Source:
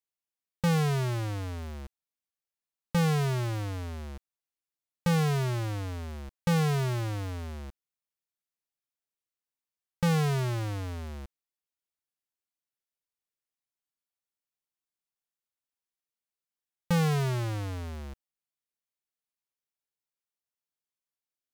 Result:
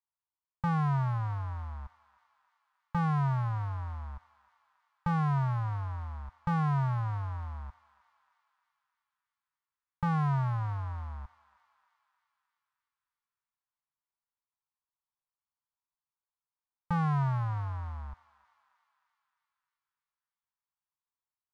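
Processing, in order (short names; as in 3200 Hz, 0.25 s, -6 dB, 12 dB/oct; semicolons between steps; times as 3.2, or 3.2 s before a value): EQ curve 140 Hz 0 dB, 370 Hz -26 dB, 970 Hz +7 dB, 2600 Hz -15 dB, 4500 Hz -18 dB, 12000 Hz -29 dB; on a send: thinning echo 0.308 s, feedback 68%, high-pass 940 Hz, level -17.5 dB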